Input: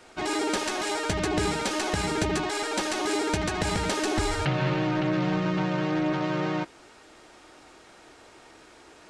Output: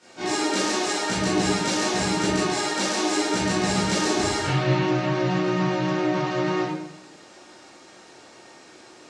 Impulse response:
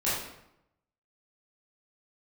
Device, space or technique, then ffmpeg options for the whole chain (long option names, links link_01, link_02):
supermarket ceiling speaker: -filter_complex "[0:a]highpass=210,lowpass=6700,bass=frequency=250:gain=9,treble=frequency=4000:gain=10[link_01];[1:a]atrim=start_sample=2205[link_02];[link_01][link_02]afir=irnorm=-1:irlink=0,volume=-7.5dB"